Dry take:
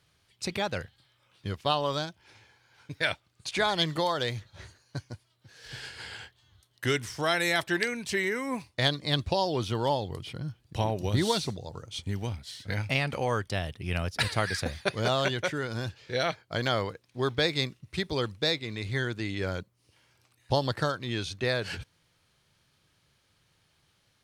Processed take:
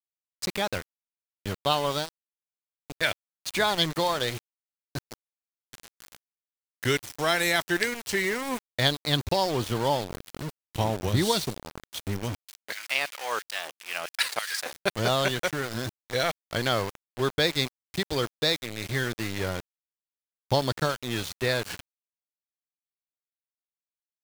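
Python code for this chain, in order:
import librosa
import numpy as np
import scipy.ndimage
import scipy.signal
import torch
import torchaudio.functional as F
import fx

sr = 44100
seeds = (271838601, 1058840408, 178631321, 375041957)

y = fx.high_shelf(x, sr, hz=9300.0, db=7.0)
y = np.where(np.abs(y) >= 10.0 ** (-32.5 / 20.0), y, 0.0)
y = fx.filter_lfo_highpass(y, sr, shape='saw_down', hz=3.0, low_hz=490.0, high_hz=2800.0, q=0.78, at=(12.39, 14.73))
y = F.gain(torch.from_numpy(y), 2.0).numpy()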